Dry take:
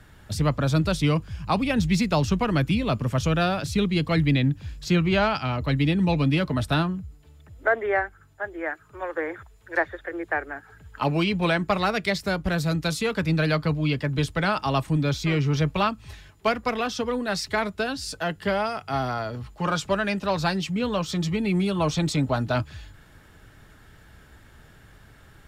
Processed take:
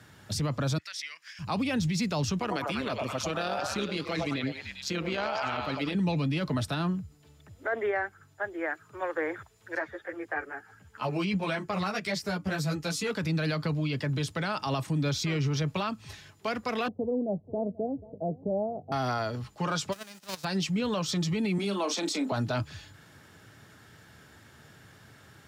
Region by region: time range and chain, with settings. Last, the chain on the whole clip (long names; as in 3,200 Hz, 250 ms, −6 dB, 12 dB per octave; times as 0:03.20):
0:00.78–0:01.39: parametric band 5,400 Hz +8.5 dB 0.38 octaves + downward compressor, threshold −35 dBFS + high-pass with resonance 1,900 Hz, resonance Q 5.4
0:02.40–0:05.95: parametric band 140 Hz −13.5 dB 0.79 octaves + amplitude modulation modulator 140 Hz, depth 50% + echo through a band-pass that steps 100 ms, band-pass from 720 Hz, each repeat 0.7 octaves, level −0.5 dB
0:09.75–0:13.11: parametric band 3,800 Hz −4.5 dB 0.32 octaves + string-ensemble chorus
0:16.88–0:18.92: Butterworth low-pass 710 Hz 48 dB per octave + repeating echo 486 ms, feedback 29%, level −21.5 dB
0:19.92–0:20.43: spectral envelope flattened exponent 0.3 + noise gate −21 dBFS, range −33 dB + compressor whose output falls as the input rises −39 dBFS
0:21.58–0:22.32: Butterworth high-pass 200 Hz 96 dB per octave + double-tracking delay 35 ms −10.5 dB
whole clip: high-pass filter 92 Hz 24 dB per octave; parametric band 5,600 Hz +5 dB 0.91 octaves; brickwall limiter −20.5 dBFS; level −1 dB